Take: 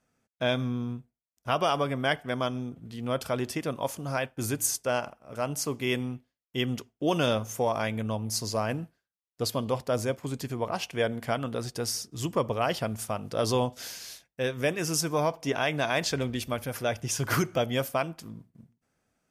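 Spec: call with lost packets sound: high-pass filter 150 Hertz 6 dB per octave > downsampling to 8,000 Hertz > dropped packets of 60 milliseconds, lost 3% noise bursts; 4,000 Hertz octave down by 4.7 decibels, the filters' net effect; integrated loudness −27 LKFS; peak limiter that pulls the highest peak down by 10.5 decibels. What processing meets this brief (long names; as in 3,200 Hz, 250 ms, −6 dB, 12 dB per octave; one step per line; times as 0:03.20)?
parametric band 4,000 Hz −6.5 dB
brickwall limiter −23.5 dBFS
high-pass filter 150 Hz 6 dB per octave
downsampling to 8,000 Hz
dropped packets of 60 ms, lost 3% noise bursts
level +9 dB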